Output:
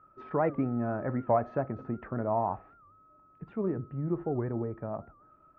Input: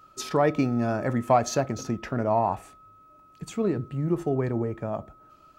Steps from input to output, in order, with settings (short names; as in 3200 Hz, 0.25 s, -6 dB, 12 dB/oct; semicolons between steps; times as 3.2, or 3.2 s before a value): LPF 1700 Hz 24 dB/oct; record warp 78 rpm, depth 160 cents; gain -5.5 dB